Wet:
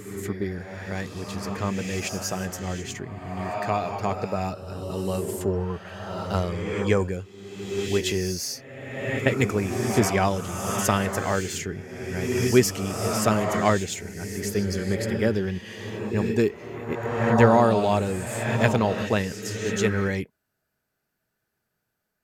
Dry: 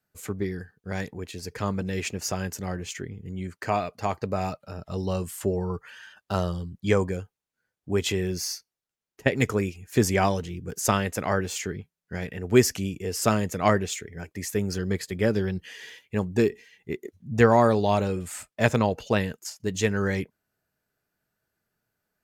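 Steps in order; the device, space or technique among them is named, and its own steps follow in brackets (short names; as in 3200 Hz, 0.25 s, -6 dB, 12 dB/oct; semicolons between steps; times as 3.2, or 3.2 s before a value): reverse reverb (reverse; reverb RT60 1.8 s, pre-delay 93 ms, DRR 3 dB; reverse)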